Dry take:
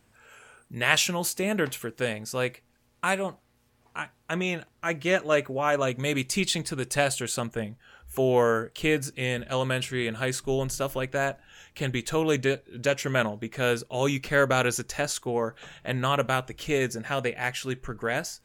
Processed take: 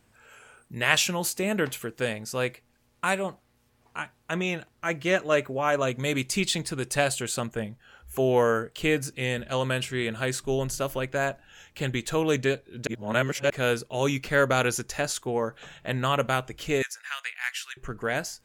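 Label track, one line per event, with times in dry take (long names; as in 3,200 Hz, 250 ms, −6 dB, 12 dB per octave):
12.870000	13.500000	reverse
16.820000	17.770000	high-pass filter 1,300 Hz 24 dB per octave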